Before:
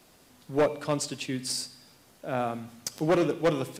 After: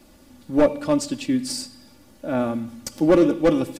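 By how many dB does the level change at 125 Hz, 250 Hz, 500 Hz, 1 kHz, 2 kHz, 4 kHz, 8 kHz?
+3.0 dB, +10.5 dB, +6.5 dB, +2.5 dB, +2.5 dB, +1.5 dB, +1.5 dB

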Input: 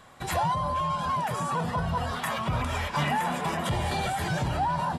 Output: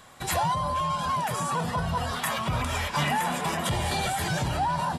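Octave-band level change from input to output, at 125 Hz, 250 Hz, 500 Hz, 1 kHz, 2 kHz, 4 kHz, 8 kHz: 0.0 dB, 0.0 dB, 0.0 dB, +0.5 dB, +1.5 dB, +4.0 dB, +6.5 dB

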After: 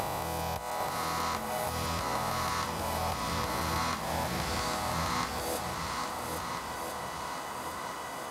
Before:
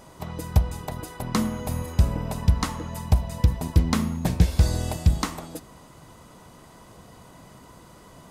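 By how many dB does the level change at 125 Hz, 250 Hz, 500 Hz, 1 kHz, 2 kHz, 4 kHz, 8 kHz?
-15.5 dB, -10.5 dB, +0.5 dB, +5.0 dB, +4.0 dB, +1.5 dB, +0.5 dB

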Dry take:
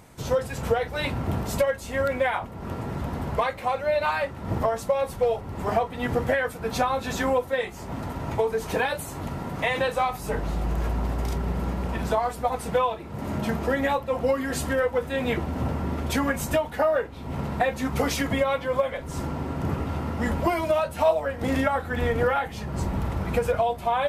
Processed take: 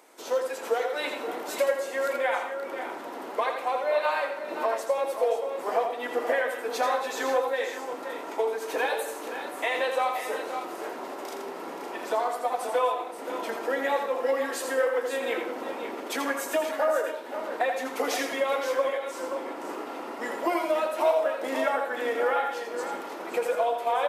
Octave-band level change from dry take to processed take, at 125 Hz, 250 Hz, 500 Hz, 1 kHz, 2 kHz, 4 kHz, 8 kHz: under -30 dB, -8.5 dB, -1.5 dB, -1.0 dB, -1.5 dB, -1.5 dB, -1.5 dB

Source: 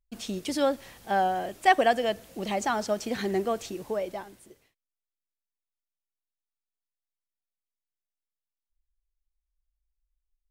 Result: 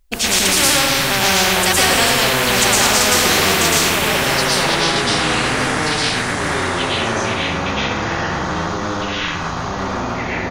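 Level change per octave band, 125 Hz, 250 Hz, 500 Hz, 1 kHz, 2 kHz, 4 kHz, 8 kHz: +22.5 dB, +13.5 dB, +10.0 dB, +11.0 dB, +19.5 dB, +25.0 dB, +28.0 dB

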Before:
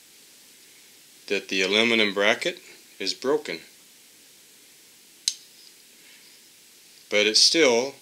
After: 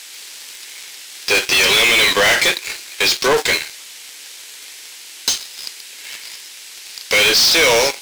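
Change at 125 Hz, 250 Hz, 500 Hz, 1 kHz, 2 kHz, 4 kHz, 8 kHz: +7.5 dB, -1.0 dB, +4.5 dB, +11.5 dB, +11.0 dB, +9.0 dB, +10.0 dB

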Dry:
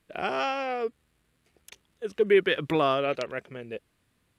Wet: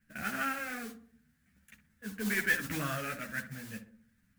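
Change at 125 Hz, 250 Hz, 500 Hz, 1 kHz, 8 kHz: -2.5 dB, -5.5 dB, -19.5 dB, -10.0 dB, no reading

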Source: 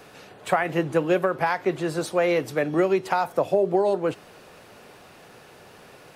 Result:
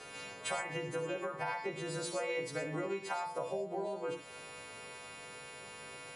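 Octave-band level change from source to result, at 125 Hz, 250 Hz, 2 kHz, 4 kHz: -13.0 dB, -17.0 dB, -10.5 dB, -5.5 dB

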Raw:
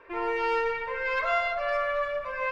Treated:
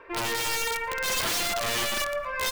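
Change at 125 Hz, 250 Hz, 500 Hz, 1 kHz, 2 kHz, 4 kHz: no reading, +2.5 dB, -4.5 dB, -2.5 dB, +0.5 dB, +14.5 dB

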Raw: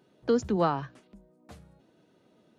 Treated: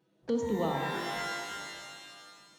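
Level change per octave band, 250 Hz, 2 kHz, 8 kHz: -3.5 dB, +8.0 dB, no reading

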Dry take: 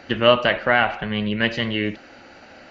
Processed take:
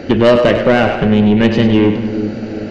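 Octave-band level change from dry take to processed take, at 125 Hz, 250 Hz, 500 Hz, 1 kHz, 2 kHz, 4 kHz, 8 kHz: +13.0 dB, +14.5 dB, +9.5 dB, +3.5 dB, +1.0 dB, 0.0 dB, no reading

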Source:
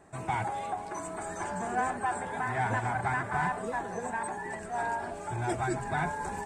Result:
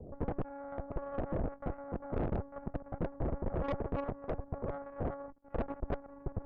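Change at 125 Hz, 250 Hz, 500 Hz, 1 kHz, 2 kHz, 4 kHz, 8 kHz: -2.5 dB, -1.0 dB, -2.0 dB, -14.5 dB, -20.0 dB, under -10 dB, under -35 dB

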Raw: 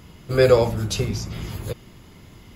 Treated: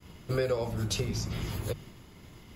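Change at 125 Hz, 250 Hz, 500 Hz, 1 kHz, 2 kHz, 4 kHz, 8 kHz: -7.5 dB, -8.5 dB, -13.5 dB, -11.5 dB, -10.5 dB, -6.5 dB, -5.0 dB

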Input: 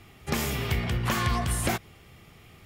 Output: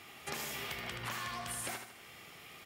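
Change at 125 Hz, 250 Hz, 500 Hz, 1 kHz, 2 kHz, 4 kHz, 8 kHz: -21.5 dB, -18.5 dB, -13.0 dB, -10.5 dB, -8.5 dB, -7.5 dB, -7.5 dB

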